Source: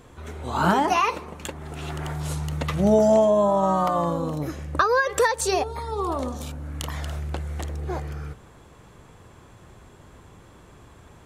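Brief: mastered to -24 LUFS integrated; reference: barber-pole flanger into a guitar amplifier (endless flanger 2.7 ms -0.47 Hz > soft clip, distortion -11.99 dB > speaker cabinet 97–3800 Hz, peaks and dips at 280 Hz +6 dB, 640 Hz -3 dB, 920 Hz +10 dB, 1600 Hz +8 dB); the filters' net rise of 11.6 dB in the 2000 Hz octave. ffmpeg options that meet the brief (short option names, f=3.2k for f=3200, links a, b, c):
-filter_complex "[0:a]equalizer=f=2k:t=o:g=6.5,asplit=2[a][b];[b]adelay=2.7,afreqshift=-0.47[c];[a][c]amix=inputs=2:normalize=1,asoftclip=threshold=-20.5dB,highpass=97,equalizer=f=280:t=q:w=4:g=6,equalizer=f=640:t=q:w=4:g=-3,equalizer=f=920:t=q:w=4:g=10,equalizer=f=1.6k:t=q:w=4:g=8,lowpass=f=3.8k:w=0.5412,lowpass=f=3.8k:w=1.3066,volume=2.5dB"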